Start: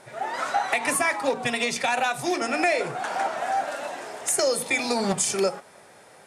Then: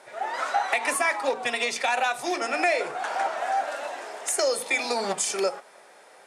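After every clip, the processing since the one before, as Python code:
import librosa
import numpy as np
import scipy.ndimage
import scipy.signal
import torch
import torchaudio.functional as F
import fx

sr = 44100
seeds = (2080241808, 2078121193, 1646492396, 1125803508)

y = scipy.signal.sosfilt(scipy.signal.butter(2, 390.0, 'highpass', fs=sr, output='sos'), x)
y = fx.high_shelf(y, sr, hz=8600.0, db=-6.0)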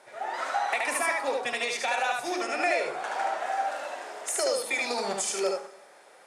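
y = x + 10.0 ** (-3.0 / 20.0) * np.pad(x, (int(74 * sr / 1000.0), 0))[:len(x)]
y = fx.rev_plate(y, sr, seeds[0], rt60_s=1.1, hf_ratio=0.9, predelay_ms=0, drr_db=14.5)
y = F.gain(torch.from_numpy(y), -4.5).numpy()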